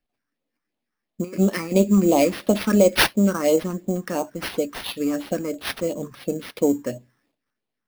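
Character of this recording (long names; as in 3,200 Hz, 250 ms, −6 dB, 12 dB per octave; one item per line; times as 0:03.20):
phaser sweep stages 4, 2.9 Hz, lowest notch 590–1,600 Hz
aliases and images of a low sample rate 7,200 Hz, jitter 0%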